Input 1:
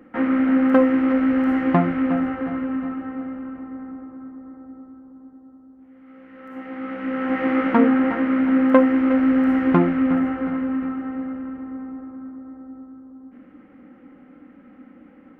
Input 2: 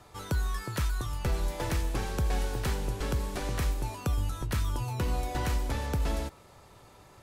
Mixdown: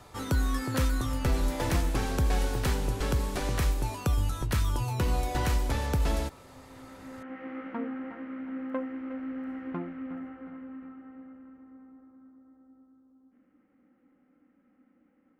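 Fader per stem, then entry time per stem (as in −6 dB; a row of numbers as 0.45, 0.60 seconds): −19.0, +2.5 decibels; 0.00, 0.00 seconds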